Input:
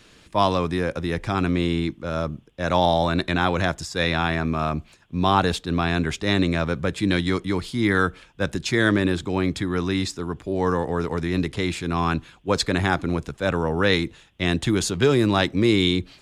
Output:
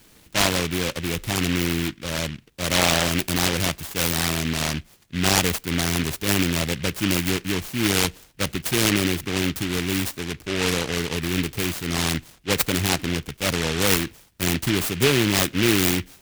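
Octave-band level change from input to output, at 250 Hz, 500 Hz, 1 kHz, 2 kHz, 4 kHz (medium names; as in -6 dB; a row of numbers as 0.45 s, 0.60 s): -1.5 dB, -3.5 dB, -5.0 dB, +1.0 dB, +4.5 dB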